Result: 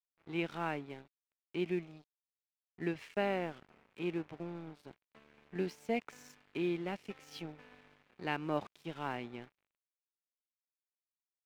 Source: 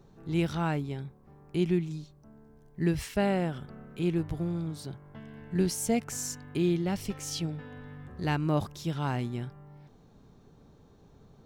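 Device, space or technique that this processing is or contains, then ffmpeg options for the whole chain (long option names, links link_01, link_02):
pocket radio on a weak battery: -af "highpass=290,lowpass=3100,aeval=exprs='sgn(val(0))*max(abs(val(0))-0.00316,0)':channel_layout=same,equalizer=frequency=2400:width_type=o:width=0.56:gain=5.5,volume=-4dB"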